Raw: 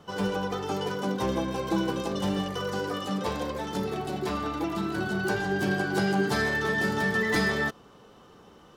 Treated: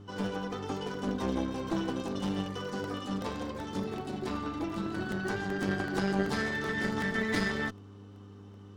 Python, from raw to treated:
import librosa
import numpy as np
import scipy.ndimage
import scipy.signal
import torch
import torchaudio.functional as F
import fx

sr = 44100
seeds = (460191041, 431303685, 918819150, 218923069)

y = fx.graphic_eq_31(x, sr, hz=(250, 630, 12500), db=(11, -4, -12))
y = fx.cheby_harmonics(y, sr, harmonics=(2,), levels_db=(-6,), full_scale_db=-12.5)
y = fx.dmg_buzz(y, sr, base_hz=100.0, harmonics=4, level_db=-43.0, tilt_db=-5, odd_only=False)
y = fx.buffer_crackle(y, sr, first_s=0.94, period_s=0.38, block=64, kind='repeat')
y = y * 10.0 ** (-6.5 / 20.0)